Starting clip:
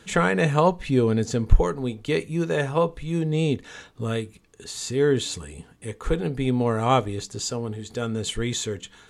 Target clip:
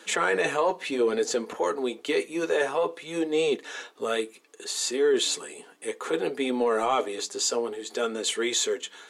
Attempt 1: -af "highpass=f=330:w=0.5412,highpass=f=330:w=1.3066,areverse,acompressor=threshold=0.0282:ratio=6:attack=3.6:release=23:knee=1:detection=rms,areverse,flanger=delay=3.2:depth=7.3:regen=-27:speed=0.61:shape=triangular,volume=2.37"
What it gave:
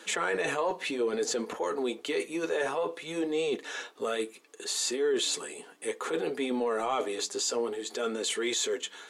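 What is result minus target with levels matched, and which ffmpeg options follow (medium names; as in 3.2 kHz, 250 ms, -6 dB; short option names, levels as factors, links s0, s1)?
compression: peak gain reduction +5.5 dB
-af "highpass=f=330:w=0.5412,highpass=f=330:w=1.3066,areverse,acompressor=threshold=0.0596:ratio=6:attack=3.6:release=23:knee=1:detection=rms,areverse,flanger=delay=3.2:depth=7.3:regen=-27:speed=0.61:shape=triangular,volume=2.37"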